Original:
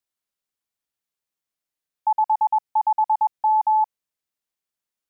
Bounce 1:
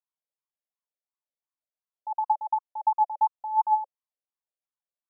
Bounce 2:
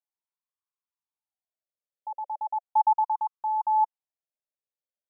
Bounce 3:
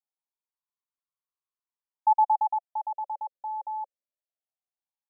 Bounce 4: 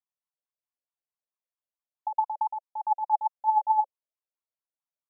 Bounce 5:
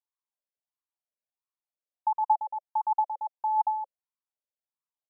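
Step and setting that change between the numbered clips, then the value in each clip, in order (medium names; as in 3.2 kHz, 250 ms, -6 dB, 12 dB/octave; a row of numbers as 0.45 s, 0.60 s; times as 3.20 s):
wah-wah, rate: 2.8 Hz, 0.37 Hz, 0.21 Hz, 4.6 Hz, 1.5 Hz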